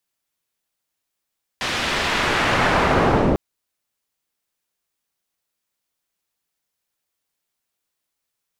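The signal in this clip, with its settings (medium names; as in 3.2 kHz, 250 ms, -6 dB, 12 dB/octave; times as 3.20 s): swept filtered noise white, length 1.75 s lowpass, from 3.4 kHz, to 360 Hz, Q 0.83, linear, gain ramp +16.5 dB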